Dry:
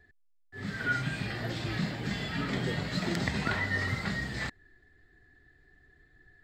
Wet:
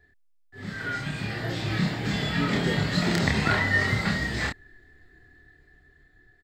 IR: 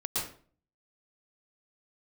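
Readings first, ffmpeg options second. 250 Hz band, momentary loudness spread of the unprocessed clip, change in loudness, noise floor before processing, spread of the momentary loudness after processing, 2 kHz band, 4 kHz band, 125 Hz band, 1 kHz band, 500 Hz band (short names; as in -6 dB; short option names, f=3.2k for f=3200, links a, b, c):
+6.5 dB, 7 LU, +6.5 dB, -65 dBFS, 9 LU, +6.0 dB, +7.0 dB, +6.5 dB, +6.0 dB, +6.5 dB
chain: -filter_complex "[0:a]dynaudnorm=f=450:g=7:m=6.5dB,asplit=2[a][b];[b]adelay=28,volume=-2.5dB[c];[a][c]amix=inputs=2:normalize=0,volume=-1dB"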